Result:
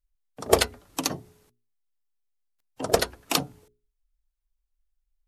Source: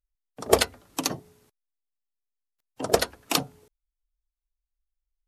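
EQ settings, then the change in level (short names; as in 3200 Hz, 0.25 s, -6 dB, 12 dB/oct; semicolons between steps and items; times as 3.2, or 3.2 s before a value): low shelf 62 Hz +9 dB; notches 60/120/180/240/300/360/420 Hz; 0.0 dB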